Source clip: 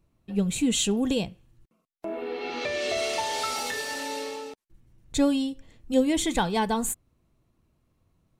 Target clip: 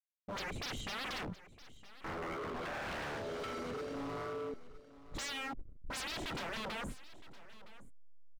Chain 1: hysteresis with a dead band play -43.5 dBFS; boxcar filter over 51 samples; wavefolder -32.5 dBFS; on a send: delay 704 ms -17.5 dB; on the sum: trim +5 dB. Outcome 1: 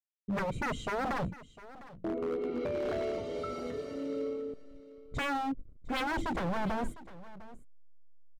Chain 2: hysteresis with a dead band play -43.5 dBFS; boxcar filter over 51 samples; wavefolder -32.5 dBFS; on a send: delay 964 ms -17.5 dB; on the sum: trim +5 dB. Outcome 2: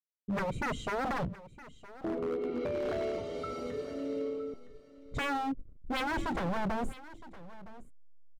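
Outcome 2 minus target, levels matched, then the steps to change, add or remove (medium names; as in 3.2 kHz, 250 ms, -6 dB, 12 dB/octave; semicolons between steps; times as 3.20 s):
wavefolder: distortion -8 dB
change: wavefolder -41 dBFS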